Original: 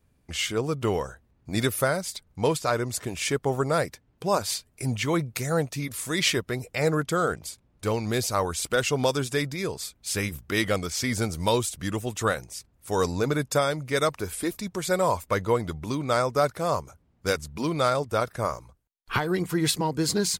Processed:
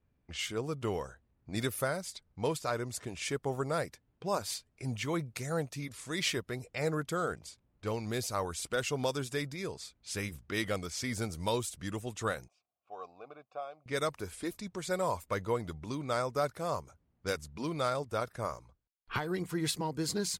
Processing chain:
0:12.48–0:13.86: formant filter a
low-pass that shuts in the quiet parts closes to 2,900 Hz, open at −24 dBFS
level −8.5 dB

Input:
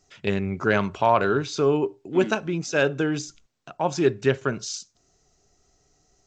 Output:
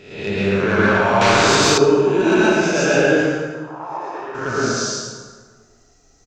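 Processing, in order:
peak hold with a rise ahead of every peak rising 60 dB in 0.71 s
soft clipping −11 dBFS, distortion −17 dB
0:03.09–0:04.35: resonant band-pass 1,100 Hz, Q 3.7
single-tap delay 113 ms −4.5 dB
dense smooth reverb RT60 1.5 s, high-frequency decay 0.65×, pre-delay 110 ms, DRR −7.5 dB
0:01.21–0:01.78: every bin compressed towards the loudest bin 2 to 1
level −2 dB

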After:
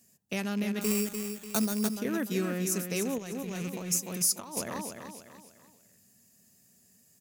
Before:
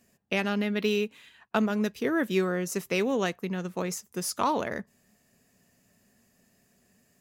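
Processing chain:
loose part that buzzes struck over −38 dBFS, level −30 dBFS
high-pass filter 92 Hz
repeating echo 295 ms, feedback 38%, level −7 dB
0:00.81–0:01.96: sample-rate reduction 5,100 Hz, jitter 0%
dynamic equaliser 3,400 Hz, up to −4 dB, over −45 dBFS, Q 1
0:03.18–0:04.57: compressor whose output falls as the input rises −33 dBFS, ratio −1
bass and treble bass +8 dB, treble +15 dB
level −7.5 dB

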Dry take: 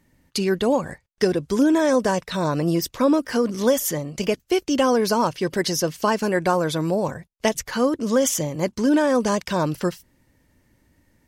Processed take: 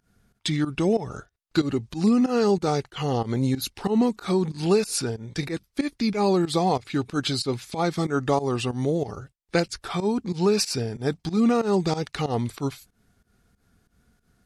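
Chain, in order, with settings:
speed change −22%
fake sidechain pumping 93 BPM, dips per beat 2, −17 dB, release 134 ms
level −2 dB

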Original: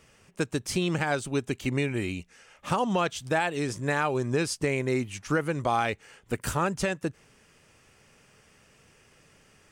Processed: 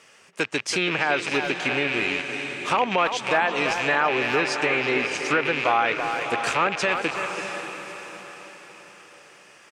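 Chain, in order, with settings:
loose part that buzzes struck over −37 dBFS, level −23 dBFS
on a send: feedback delay with all-pass diffusion 635 ms, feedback 41%, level −9 dB
on the sum: treble cut that deepens with the level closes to 2,700 Hz, closed at −20.5 dBFS
meter weighting curve A
far-end echo of a speakerphone 330 ms, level −8 dB
in parallel at −2 dB: brickwall limiter −19.5 dBFS, peak gain reduction 8 dB
on the sum: level +2 dB

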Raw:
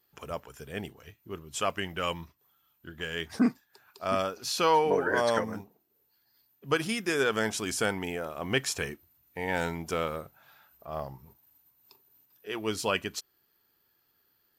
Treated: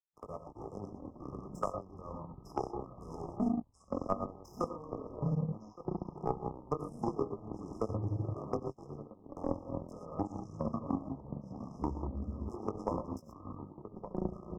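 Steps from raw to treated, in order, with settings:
adaptive Wiener filter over 9 samples
treble cut that deepens with the level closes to 370 Hz, closed at −22 dBFS
output level in coarse steps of 14 dB
chorus effect 0.38 Hz, delay 18.5 ms, depth 2.7 ms
reverb whose tail is shaped and stops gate 140 ms rising, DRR 1.5 dB
power curve on the samples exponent 2
slap from a distant wall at 200 metres, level −22 dB
delay with pitch and tempo change per echo 129 ms, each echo −7 semitones, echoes 3
linear-phase brick-wall band-stop 1,300–5,000 Hz
multiband upward and downward compressor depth 70%
level +11 dB

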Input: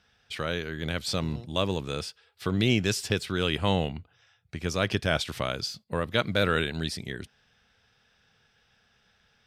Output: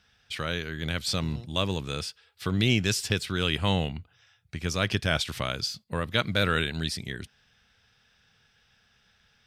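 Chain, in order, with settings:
parametric band 500 Hz −5.5 dB 2.5 octaves
level +2.5 dB

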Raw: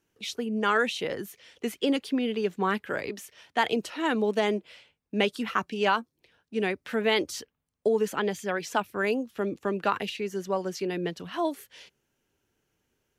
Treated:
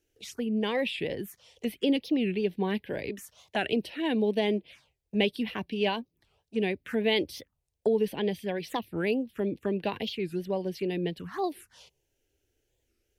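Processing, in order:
low-shelf EQ 100 Hz +9.5 dB
phaser swept by the level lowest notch 180 Hz, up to 1,300 Hz, full sweep at −28 dBFS
wow of a warped record 45 rpm, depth 250 cents

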